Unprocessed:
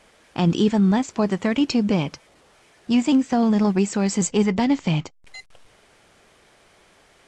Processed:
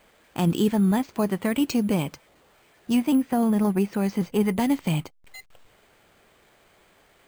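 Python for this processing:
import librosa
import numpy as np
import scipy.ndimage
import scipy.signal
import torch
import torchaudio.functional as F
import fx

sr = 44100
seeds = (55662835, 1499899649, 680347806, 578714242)

y = fx.high_shelf(x, sr, hz=4800.0, db=-10.5, at=(2.99, 4.46))
y = np.repeat(scipy.signal.resample_poly(y, 1, 4), 4)[:len(y)]
y = F.gain(torch.from_numpy(y), -3.0).numpy()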